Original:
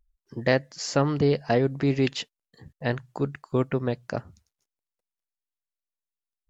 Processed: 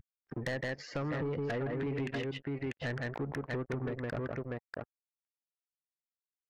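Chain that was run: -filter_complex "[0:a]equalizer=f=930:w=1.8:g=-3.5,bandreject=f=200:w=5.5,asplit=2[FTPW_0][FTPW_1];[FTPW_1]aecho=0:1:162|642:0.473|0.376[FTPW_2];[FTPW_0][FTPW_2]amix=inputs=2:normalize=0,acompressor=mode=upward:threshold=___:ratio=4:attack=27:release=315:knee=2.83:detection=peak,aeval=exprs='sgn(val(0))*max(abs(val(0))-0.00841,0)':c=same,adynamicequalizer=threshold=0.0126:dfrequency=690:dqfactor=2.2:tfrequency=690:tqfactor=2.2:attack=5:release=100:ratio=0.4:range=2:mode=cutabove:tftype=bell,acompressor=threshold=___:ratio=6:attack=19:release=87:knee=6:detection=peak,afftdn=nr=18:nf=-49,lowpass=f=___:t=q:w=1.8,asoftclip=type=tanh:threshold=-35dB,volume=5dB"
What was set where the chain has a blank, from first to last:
-40dB, -37dB, 2k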